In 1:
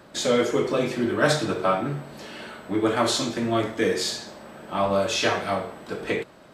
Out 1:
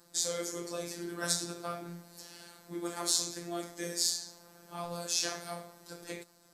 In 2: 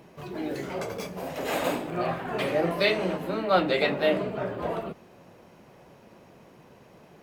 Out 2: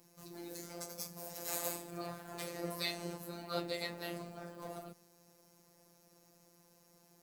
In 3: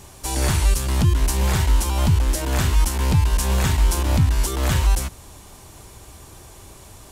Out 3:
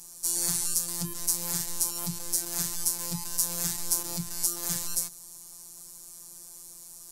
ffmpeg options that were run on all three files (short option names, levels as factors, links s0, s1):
-af "aexciter=amount=6.1:drive=6.7:freq=4400,afftfilt=real='hypot(re,im)*cos(PI*b)':imag='0':win_size=1024:overlap=0.75,volume=0.237"